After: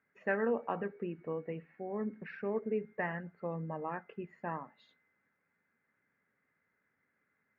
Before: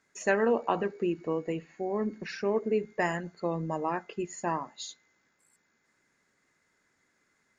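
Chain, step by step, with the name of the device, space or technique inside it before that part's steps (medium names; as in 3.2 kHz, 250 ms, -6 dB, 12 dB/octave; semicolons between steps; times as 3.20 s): bass cabinet (cabinet simulation 77–2200 Hz, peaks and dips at 340 Hz -8 dB, 680 Hz -4 dB, 1 kHz -5 dB); trim -4.5 dB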